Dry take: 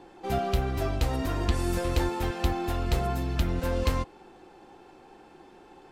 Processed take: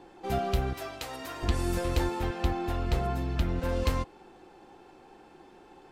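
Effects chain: 0.73–1.43 s: high-pass 1 kHz 6 dB/octave; 2.20–3.69 s: treble shelf 5.3 kHz -7.5 dB; trim -1.5 dB

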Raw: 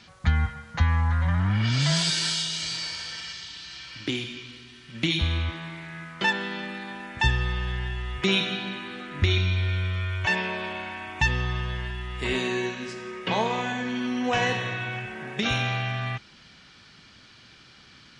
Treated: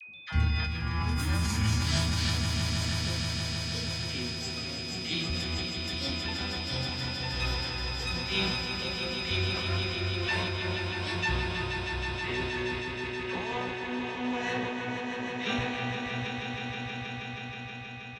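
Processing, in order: level-controlled noise filter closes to 690 Hz, open at -19 dBFS; tremolo 3.1 Hz, depth 77%; whistle 2.5 kHz -37 dBFS; phase dispersion lows, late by 80 ms, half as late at 900 Hz; ever faster or slower copies 131 ms, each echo +6 st, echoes 2, each echo -6 dB; doubling 29 ms -10.5 dB; echo with a slow build-up 159 ms, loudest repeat 5, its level -8 dB; decay stretcher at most 27 dB/s; trim -6 dB

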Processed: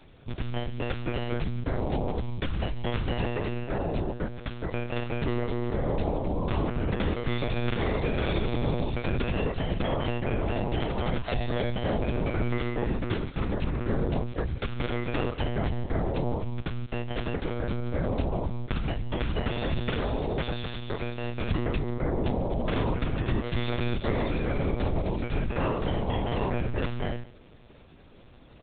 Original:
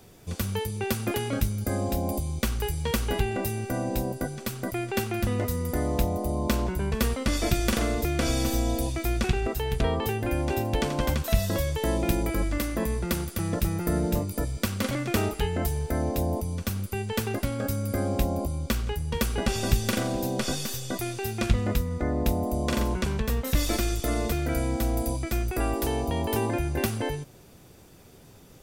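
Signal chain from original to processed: CVSD coder 64 kbps; peak limiter -17.5 dBFS, peak gain reduction 9 dB; on a send: delay 140 ms -19.5 dB; on the sum: monotone LPC vocoder at 8 kHz 120 Hz

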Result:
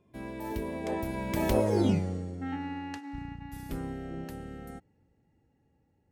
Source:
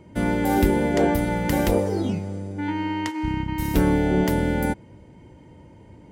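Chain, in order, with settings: Doppler pass-by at 1.89 s, 37 m/s, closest 8.9 m

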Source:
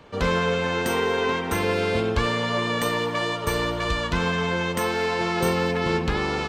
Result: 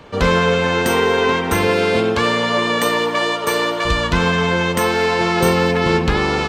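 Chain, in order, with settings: 1.67–3.84 s: high-pass 120 Hz -> 310 Hz 12 dB/octave; trim +7.5 dB

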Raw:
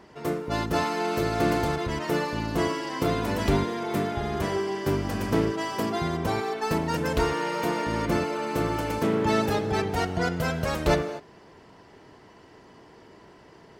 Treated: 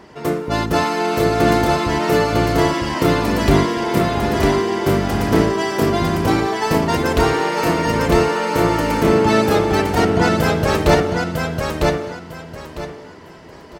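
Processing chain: feedback delay 952 ms, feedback 25%, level -3 dB; trim +8 dB

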